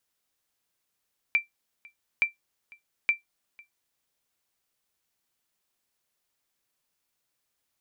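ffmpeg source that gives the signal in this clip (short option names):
-f lavfi -i "aevalsrc='0.2*(sin(2*PI*2350*mod(t,0.87))*exp(-6.91*mod(t,0.87)/0.14)+0.0473*sin(2*PI*2350*max(mod(t,0.87)-0.5,0))*exp(-6.91*max(mod(t,0.87)-0.5,0)/0.14))':d=2.61:s=44100"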